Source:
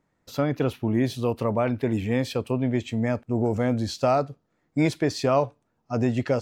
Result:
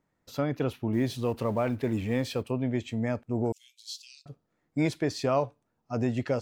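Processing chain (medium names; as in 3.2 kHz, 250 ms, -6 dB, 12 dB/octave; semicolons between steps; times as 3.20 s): 0.93–2.43 s: companding laws mixed up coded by mu; 3.52–4.26 s: steep high-pass 2.9 kHz 48 dB/octave; trim -4.5 dB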